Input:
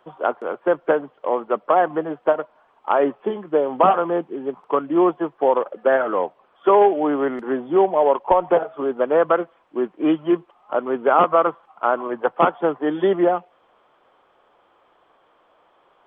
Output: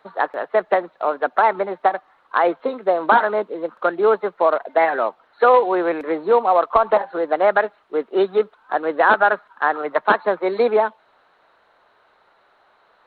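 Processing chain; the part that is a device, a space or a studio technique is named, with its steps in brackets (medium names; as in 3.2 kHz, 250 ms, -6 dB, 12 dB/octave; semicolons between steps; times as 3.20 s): nightcore (tape speed +23%); trim +1 dB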